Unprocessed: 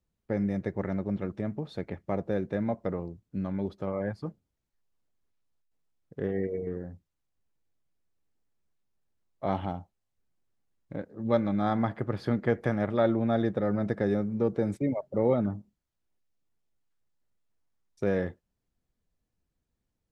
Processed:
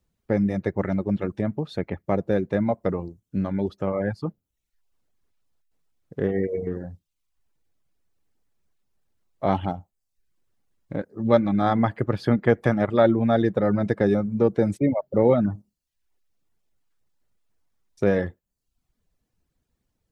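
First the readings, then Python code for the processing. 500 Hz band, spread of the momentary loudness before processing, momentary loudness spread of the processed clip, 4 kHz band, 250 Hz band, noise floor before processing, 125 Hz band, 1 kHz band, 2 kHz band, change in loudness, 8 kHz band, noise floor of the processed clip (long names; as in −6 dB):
+7.0 dB, 12 LU, 13 LU, +7.0 dB, +6.0 dB, −83 dBFS, +6.0 dB, +7.0 dB, +7.0 dB, +6.5 dB, can't be measured, −80 dBFS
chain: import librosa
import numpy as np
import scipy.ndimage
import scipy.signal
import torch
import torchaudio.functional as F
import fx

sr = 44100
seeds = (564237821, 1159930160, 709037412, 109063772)

y = fx.dereverb_blind(x, sr, rt60_s=0.59)
y = y * librosa.db_to_amplitude(7.5)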